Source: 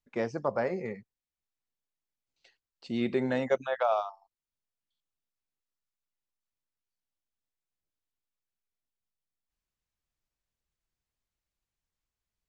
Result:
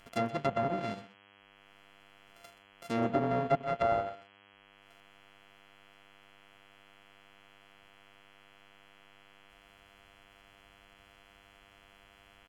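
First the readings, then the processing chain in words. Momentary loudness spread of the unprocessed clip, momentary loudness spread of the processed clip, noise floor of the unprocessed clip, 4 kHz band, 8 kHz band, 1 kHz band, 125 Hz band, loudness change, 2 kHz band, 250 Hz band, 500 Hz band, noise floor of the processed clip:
11 LU, 11 LU, under -85 dBFS, 0.0 dB, no reading, +2.0 dB, +3.5 dB, -1.0 dB, -3.0 dB, -1.5 dB, -2.0 dB, -61 dBFS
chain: sorted samples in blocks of 64 samples; low-pass that closes with the level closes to 1.2 kHz, closed at -25.5 dBFS; upward compressor, threshold -45 dBFS; mains buzz 100 Hz, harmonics 33, -61 dBFS 0 dB/octave; delay 126 ms -15.5 dB

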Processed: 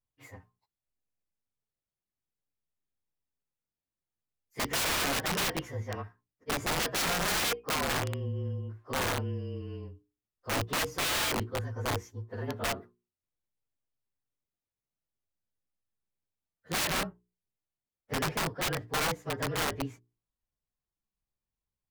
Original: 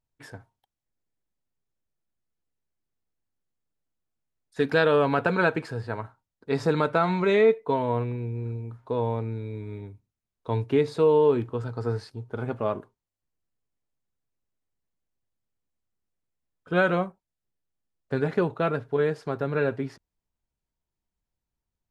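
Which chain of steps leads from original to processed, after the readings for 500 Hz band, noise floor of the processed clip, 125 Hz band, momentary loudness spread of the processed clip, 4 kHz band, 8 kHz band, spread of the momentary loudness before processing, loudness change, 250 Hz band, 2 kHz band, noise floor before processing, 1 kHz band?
-13.5 dB, under -85 dBFS, -6.0 dB, 12 LU, +9.0 dB, no reading, 16 LU, -5.5 dB, -9.0 dB, -2.5 dB, under -85 dBFS, -4.5 dB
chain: frequency axis rescaled in octaves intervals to 110%; integer overflow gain 22.5 dB; hum notches 60/120/180/240/300/360/420 Hz; trim -2 dB

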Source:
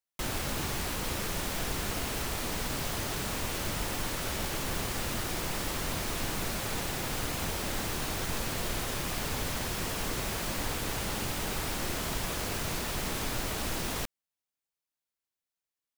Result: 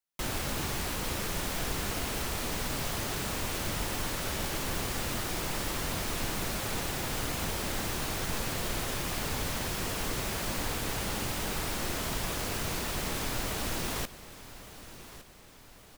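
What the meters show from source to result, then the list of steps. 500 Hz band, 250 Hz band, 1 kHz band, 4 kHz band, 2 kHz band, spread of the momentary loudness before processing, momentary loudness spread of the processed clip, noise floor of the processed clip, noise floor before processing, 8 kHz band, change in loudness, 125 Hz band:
0.0 dB, 0.0 dB, 0.0 dB, 0.0 dB, 0.0 dB, 0 LU, 1 LU, -53 dBFS, under -85 dBFS, 0.0 dB, 0.0 dB, 0.0 dB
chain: feedback delay 1161 ms, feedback 49%, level -15.5 dB

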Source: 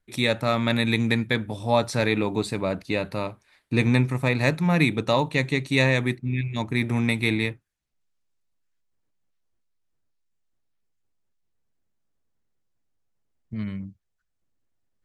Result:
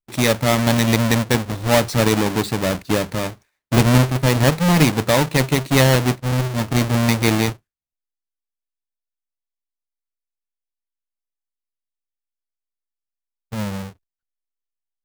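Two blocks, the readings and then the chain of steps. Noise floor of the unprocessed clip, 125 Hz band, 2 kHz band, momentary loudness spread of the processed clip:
-76 dBFS, +7.0 dB, +3.0 dB, 11 LU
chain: square wave that keeps the level; gate with hold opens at -41 dBFS; trim +1.5 dB

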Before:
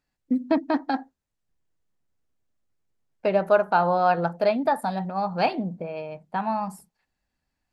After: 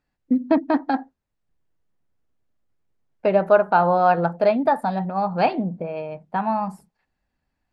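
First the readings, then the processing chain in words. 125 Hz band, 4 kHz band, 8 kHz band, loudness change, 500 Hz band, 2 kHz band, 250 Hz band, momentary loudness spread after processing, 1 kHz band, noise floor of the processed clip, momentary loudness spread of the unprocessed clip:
+4.0 dB, -1.5 dB, no reading, +3.5 dB, +3.5 dB, +2.0 dB, +4.0 dB, 11 LU, +3.5 dB, -79 dBFS, 11 LU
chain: low-pass 2.3 kHz 6 dB/octave; trim +4 dB

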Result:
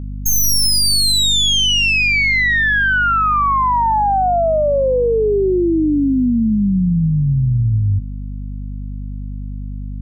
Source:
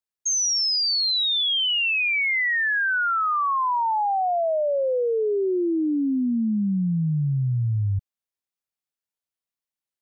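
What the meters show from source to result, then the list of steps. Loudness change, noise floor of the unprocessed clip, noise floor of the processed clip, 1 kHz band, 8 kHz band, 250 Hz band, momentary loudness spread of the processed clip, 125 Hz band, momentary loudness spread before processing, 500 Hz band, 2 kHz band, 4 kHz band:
+7.5 dB, under -85 dBFS, -26 dBFS, +7.5 dB, no reading, +7.5 dB, 17 LU, +8.5 dB, 5 LU, +7.5 dB, +7.5 dB, +6.5 dB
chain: tracing distortion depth 0.049 ms; hum 50 Hz, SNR 10 dB; trim +7.5 dB

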